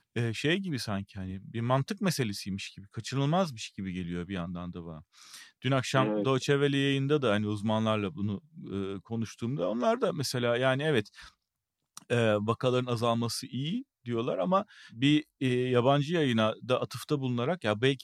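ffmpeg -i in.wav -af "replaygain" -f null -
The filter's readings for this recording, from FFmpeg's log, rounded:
track_gain = +9.6 dB
track_peak = 0.237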